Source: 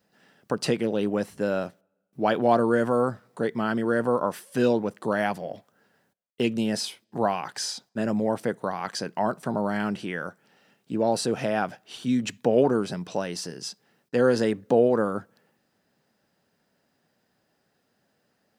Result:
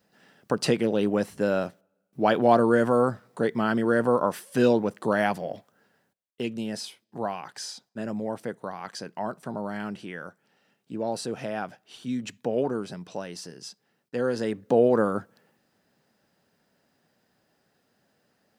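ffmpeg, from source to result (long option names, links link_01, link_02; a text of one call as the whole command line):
ffmpeg -i in.wav -af "volume=9dB,afade=type=out:start_time=5.51:duration=0.9:silence=0.421697,afade=type=in:start_time=14.37:duration=0.61:silence=0.421697" out.wav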